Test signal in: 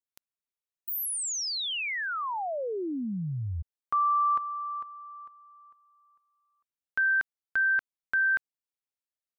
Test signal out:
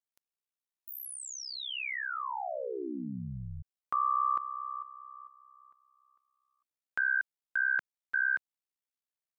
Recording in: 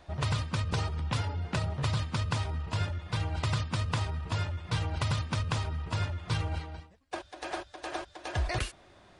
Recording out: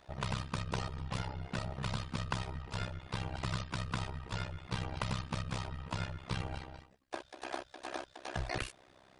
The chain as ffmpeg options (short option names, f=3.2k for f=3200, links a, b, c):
-filter_complex "[0:a]lowshelf=f=110:g=-7,acrossover=split=2800[a][b];[b]acompressor=threshold=-38dB:ratio=4:attack=1:release=60[c];[a][c]amix=inputs=2:normalize=0,tremolo=f=65:d=0.974"